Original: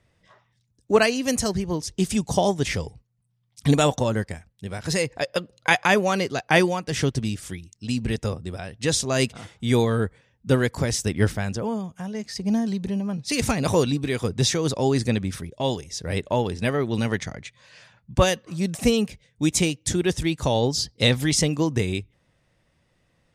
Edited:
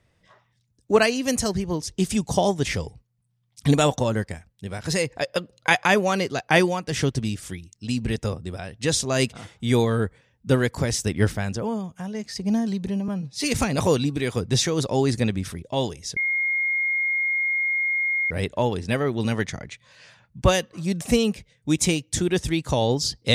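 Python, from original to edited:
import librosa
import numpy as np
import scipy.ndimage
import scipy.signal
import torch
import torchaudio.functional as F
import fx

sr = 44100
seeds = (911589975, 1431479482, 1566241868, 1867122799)

y = fx.edit(x, sr, fx.stretch_span(start_s=13.08, length_s=0.25, factor=1.5),
    fx.insert_tone(at_s=16.04, length_s=2.14, hz=2140.0, db=-20.5), tone=tone)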